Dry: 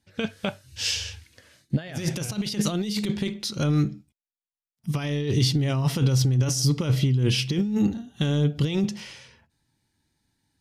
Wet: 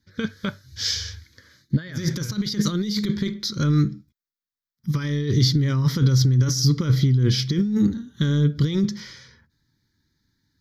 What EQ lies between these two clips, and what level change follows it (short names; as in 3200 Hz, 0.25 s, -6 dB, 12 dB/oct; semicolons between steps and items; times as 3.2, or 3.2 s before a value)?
fixed phaser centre 2700 Hz, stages 6; +4.0 dB